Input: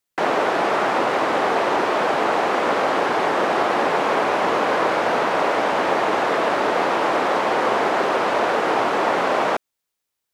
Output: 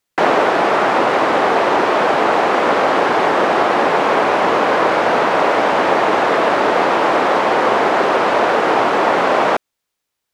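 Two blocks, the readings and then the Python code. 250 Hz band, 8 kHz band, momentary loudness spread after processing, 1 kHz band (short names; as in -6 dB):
+5.5 dB, +2.5 dB, 0 LU, +5.5 dB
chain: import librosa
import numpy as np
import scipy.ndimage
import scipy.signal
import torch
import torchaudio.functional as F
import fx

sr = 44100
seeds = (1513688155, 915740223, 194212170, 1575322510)

y = fx.high_shelf(x, sr, hz=7200.0, db=-6.0)
y = fx.rider(y, sr, range_db=10, speed_s=0.5)
y = y * librosa.db_to_amplitude(5.5)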